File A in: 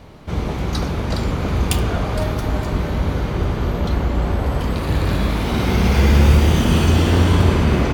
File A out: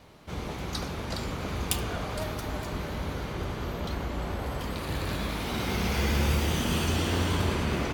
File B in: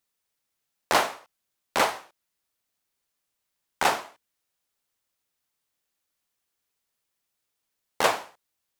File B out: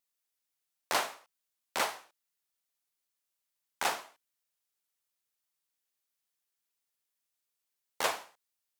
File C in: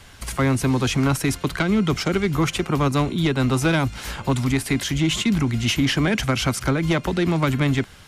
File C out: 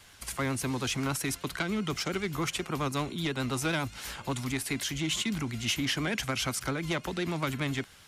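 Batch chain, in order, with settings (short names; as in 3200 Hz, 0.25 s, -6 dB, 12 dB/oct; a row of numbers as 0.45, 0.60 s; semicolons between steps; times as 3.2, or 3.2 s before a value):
vibrato 10 Hz 47 cents; tilt +1.5 dB/oct; gain -9 dB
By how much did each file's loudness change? -12.0, -8.0, -10.0 LU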